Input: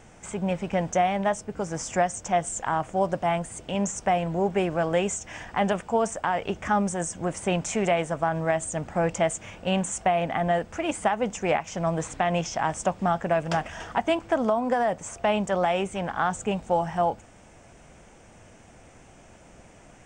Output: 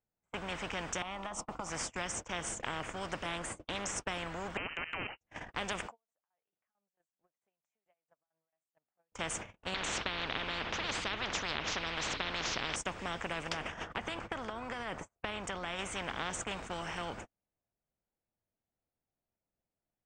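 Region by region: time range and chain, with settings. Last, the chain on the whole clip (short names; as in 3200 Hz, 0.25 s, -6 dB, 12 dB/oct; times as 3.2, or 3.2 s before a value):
1.02–1.7 band shelf 1100 Hz +15 dB 1.3 oct + compressor 4:1, threshold -25 dBFS + fixed phaser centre 420 Hz, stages 6
3.25–3.92 small resonant body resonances 320/570/1100 Hz, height 10 dB, ringing for 70 ms + Doppler distortion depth 0.16 ms
4.57–5.21 level quantiser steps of 13 dB + inverted band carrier 2900 Hz
5.86–9.12 HPF 870 Hz 6 dB/oct + compressor 10:1, threshold -38 dBFS + tremolo saw down 4.5 Hz, depth 85%
9.74–12.76 LPF 3300 Hz 24 dB/oct + spectral compressor 10:1
13.49–15.79 high shelf 2600 Hz -4.5 dB + compressor 3:1, threshold -25 dBFS + mismatched tape noise reduction decoder only
whole clip: LPF 1900 Hz 6 dB/oct; gate -38 dBFS, range -54 dB; spectral compressor 4:1; gain -4.5 dB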